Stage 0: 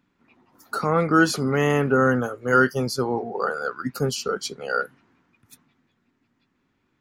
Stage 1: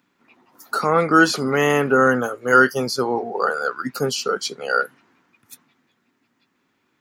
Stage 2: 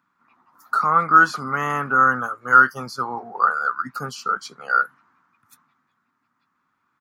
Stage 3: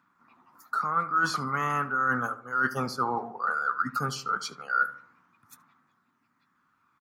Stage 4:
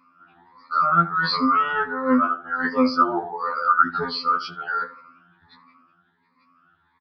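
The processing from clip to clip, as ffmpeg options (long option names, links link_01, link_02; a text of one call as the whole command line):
ffmpeg -i in.wav -filter_complex "[0:a]highpass=frequency=330:poles=1,highshelf=frequency=6000:gain=4.5,acrossover=split=5600[link_01][link_02];[link_02]acompressor=threshold=-37dB:ratio=4:attack=1:release=60[link_03];[link_01][link_03]amix=inputs=2:normalize=0,volume=5dB" out.wav
ffmpeg -i in.wav -af "firequalizer=gain_entry='entry(160,0);entry(410,-10);entry(1200,12);entry(1800,0);entry(2800,-7);entry(4400,-5)':delay=0.05:min_phase=1,volume=-5.5dB" out.wav
ffmpeg -i in.wav -filter_complex "[0:a]areverse,acompressor=threshold=-24dB:ratio=8,areverse,aphaser=in_gain=1:out_gain=1:delay=1:decay=0.25:speed=0.35:type=triangular,asplit=2[link_01][link_02];[link_02]adelay=74,lowpass=frequency=1600:poles=1,volume=-13dB,asplit=2[link_03][link_04];[link_04]adelay=74,lowpass=frequency=1600:poles=1,volume=0.48,asplit=2[link_05][link_06];[link_06]adelay=74,lowpass=frequency=1600:poles=1,volume=0.48,asplit=2[link_07][link_08];[link_08]adelay=74,lowpass=frequency=1600:poles=1,volume=0.48,asplit=2[link_09][link_10];[link_10]adelay=74,lowpass=frequency=1600:poles=1,volume=0.48[link_11];[link_01][link_03][link_05][link_07][link_09][link_11]amix=inputs=6:normalize=0" out.wav
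ffmpeg -i in.wav -af "afftfilt=real='re*pow(10,18/40*sin(2*PI*(0.94*log(max(b,1)*sr/1024/100)/log(2)-(1.4)*(pts-256)/sr)))':imag='im*pow(10,18/40*sin(2*PI*(0.94*log(max(b,1)*sr/1024/100)/log(2)-(1.4)*(pts-256)/sr)))':win_size=1024:overlap=0.75,aresample=11025,aresample=44100,afftfilt=real='re*2*eq(mod(b,4),0)':imag='im*2*eq(mod(b,4),0)':win_size=2048:overlap=0.75,volume=6.5dB" out.wav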